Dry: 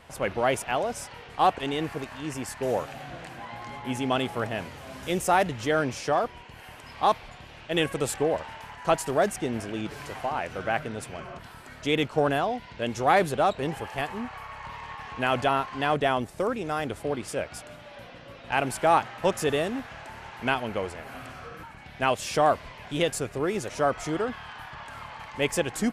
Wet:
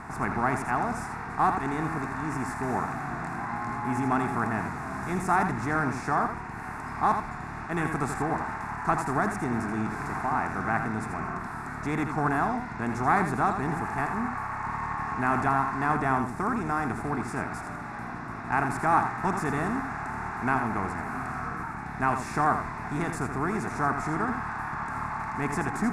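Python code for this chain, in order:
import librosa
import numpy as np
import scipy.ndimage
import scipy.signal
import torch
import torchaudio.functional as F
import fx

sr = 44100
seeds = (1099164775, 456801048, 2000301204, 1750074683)

p1 = fx.bin_compress(x, sr, power=0.6)
p2 = scipy.signal.sosfilt(scipy.signal.butter(2, 12000.0, 'lowpass', fs=sr, output='sos'), p1)
p3 = fx.high_shelf(p2, sr, hz=3200.0, db=-12.0)
p4 = fx.fixed_phaser(p3, sr, hz=1300.0, stages=4)
y = p4 + fx.echo_single(p4, sr, ms=82, db=-7.5, dry=0)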